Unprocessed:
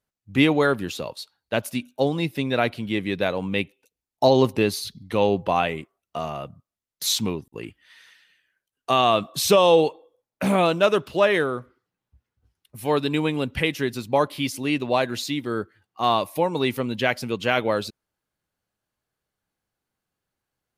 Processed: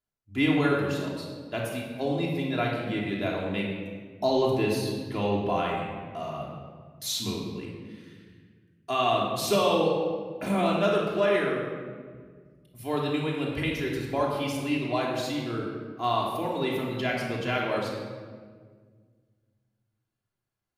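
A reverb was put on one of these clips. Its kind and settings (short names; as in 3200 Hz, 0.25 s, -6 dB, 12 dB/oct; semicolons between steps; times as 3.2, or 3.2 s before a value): shoebox room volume 2100 m³, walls mixed, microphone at 3.1 m; gain -10.5 dB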